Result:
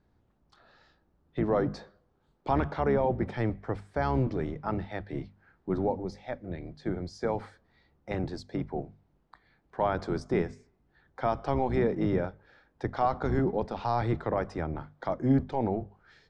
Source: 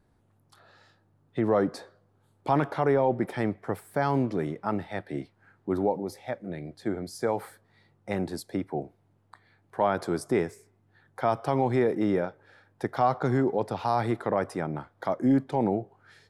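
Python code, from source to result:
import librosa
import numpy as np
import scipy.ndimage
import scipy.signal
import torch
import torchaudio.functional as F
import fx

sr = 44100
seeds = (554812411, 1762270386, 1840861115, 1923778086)

y = fx.octave_divider(x, sr, octaves=1, level_db=-1.0)
y = scipy.signal.sosfilt(scipy.signal.butter(4, 6100.0, 'lowpass', fs=sr, output='sos'), y)
y = fx.hum_notches(y, sr, base_hz=50, count=5)
y = F.gain(torch.from_numpy(y), -3.0).numpy()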